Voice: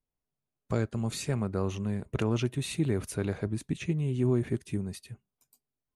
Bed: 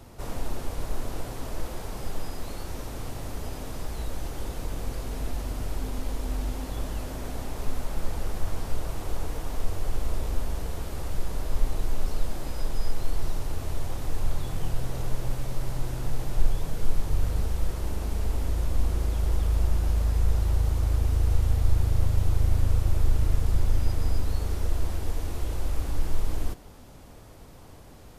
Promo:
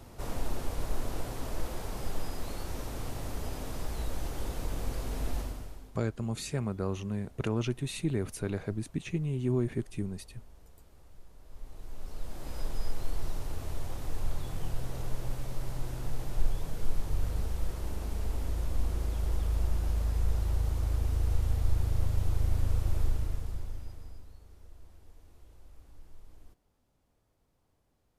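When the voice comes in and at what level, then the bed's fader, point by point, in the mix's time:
5.25 s, −2.5 dB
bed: 0:05.39 −2 dB
0:06.01 −24.5 dB
0:11.37 −24.5 dB
0:12.56 −5.5 dB
0:23.03 −5.5 dB
0:24.41 −26 dB

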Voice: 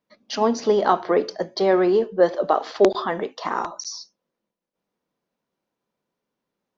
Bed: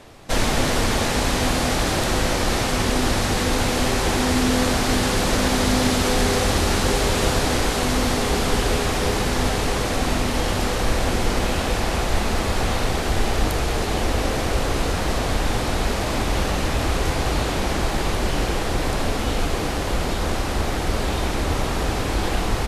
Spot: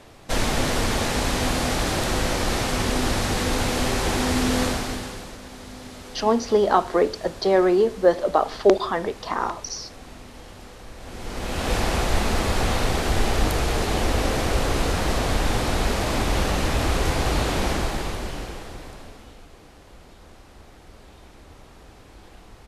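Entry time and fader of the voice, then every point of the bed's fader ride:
5.85 s, 0.0 dB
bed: 0:04.64 −2.5 dB
0:05.39 −20.5 dB
0:10.95 −20.5 dB
0:11.73 −0.5 dB
0:17.68 −0.5 dB
0:19.44 −24.5 dB

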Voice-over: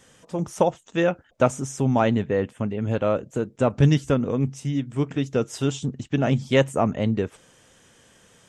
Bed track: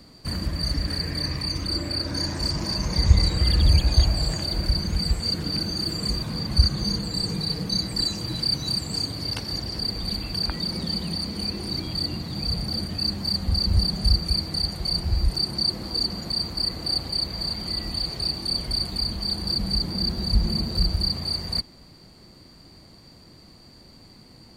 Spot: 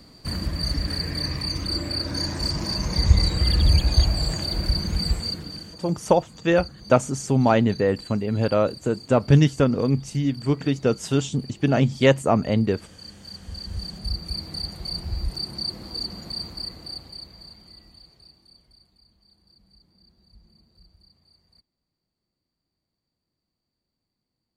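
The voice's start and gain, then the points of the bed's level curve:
5.50 s, +2.0 dB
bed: 0:05.17 0 dB
0:05.82 −17.5 dB
0:13.03 −17.5 dB
0:14.50 −5.5 dB
0:16.46 −5.5 dB
0:18.98 −33.5 dB

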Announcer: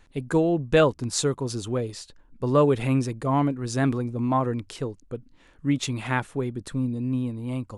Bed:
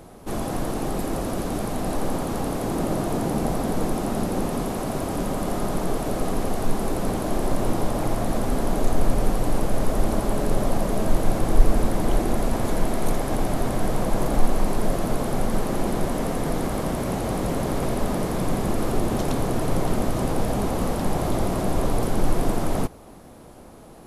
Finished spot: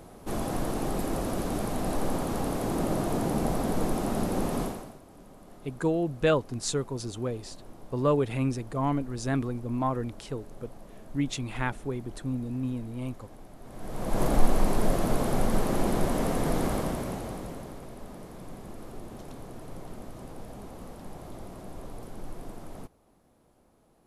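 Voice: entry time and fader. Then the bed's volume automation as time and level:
5.50 s, −5.0 dB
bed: 0:04.64 −3.5 dB
0:05.01 −25 dB
0:13.59 −25 dB
0:14.22 −2 dB
0:16.71 −2 dB
0:17.85 −19 dB

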